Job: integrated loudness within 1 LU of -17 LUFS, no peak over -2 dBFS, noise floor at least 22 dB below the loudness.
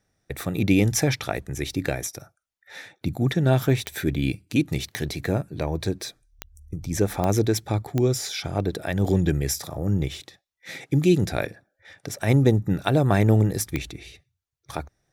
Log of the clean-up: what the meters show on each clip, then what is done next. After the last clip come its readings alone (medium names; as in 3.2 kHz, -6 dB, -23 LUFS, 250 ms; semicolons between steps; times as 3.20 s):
clicks found 6; loudness -24.0 LUFS; peak level -6.5 dBFS; loudness target -17.0 LUFS
-> de-click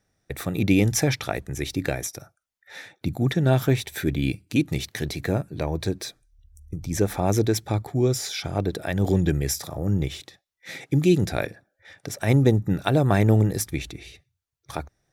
clicks found 0; loudness -24.0 LUFS; peak level -6.5 dBFS; loudness target -17.0 LUFS
-> trim +7 dB; peak limiter -2 dBFS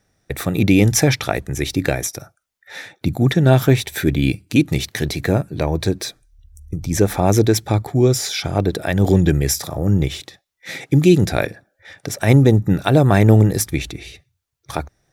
loudness -17.5 LUFS; peak level -2.0 dBFS; noise floor -72 dBFS